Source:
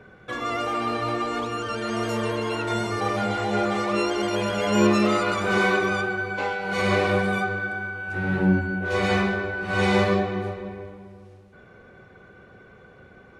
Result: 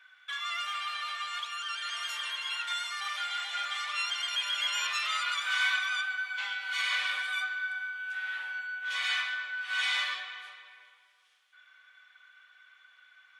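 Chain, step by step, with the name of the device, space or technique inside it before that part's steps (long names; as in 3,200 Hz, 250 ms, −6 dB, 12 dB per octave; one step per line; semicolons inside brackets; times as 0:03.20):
headphones lying on a table (high-pass filter 1,400 Hz 24 dB per octave; parametric band 3,300 Hz +11 dB 0.25 octaves)
0:05.53–0:06.37: high-pass filter 480 Hz 24 dB per octave
level −2.5 dB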